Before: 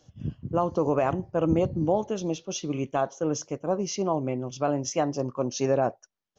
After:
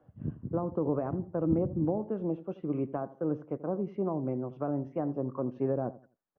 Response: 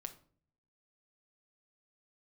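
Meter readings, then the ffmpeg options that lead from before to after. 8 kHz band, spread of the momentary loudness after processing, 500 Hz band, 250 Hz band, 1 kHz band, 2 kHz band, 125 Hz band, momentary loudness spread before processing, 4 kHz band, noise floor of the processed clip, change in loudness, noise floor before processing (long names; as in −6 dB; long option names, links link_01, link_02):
can't be measured, 6 LU, −6.5 dB, −2.5 dB, −11.0 dB, −15.0 dB, −3.5 dB, 6 LU, below −30 dB, −70 dBFS, −5.0 dB, −76 dBFS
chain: -filter_complex "[0:a]acrossover=split=370[link_01][link_02];[link_01]lowshelf=frequency=110:gain=-9[link_03];[link_02]acompressor=threshold=-36dB:ratio=6[link_04];[link_03][link_04]amix=inputs=2:normalize=0,lowpass=frequency=1600:width=0.5412,lowpass=frequency=1600:width=1.3066,asplit=2[link_05][link_06];[link_06]adelay=84,lowpass=frequency=1100:poles=1,volume=-16dB,asplit=2[link_07][link_08];[link_08]adelay=84,lowpass=frequency=1100:poles=1,volume=0.3,asplit=2[link_09][link_10];[link_10]adelay=84,lowpass=frequency=1100:poles=1,volume=0.3[link_11];[link_05][link_07][link_09][link_11]amix=inputs=4:normalize=0"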